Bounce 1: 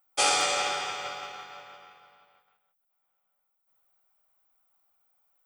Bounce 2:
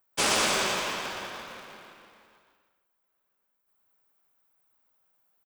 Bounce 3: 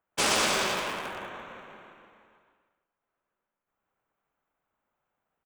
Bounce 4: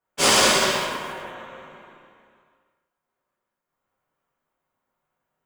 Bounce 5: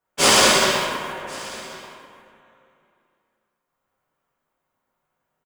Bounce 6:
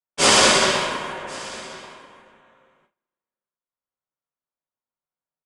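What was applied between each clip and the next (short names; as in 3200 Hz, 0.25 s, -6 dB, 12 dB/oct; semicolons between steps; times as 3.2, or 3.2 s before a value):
cycle switcher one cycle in 3, inverted; bouncing-ball echo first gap 0.12 s, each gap 0.65×, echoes 5; gain -2 dB
Wiener smoothing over 9 samples
reverb, pre-delay 3 ms, DRR -7.5 dB; upward expander 1.5:1, over -27 dBFS
echo 1.088 s -21 dB; gain +2.5 dB
gate with hold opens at -53 dBFS; steep low-pass 10000 Hz 36 dB/oct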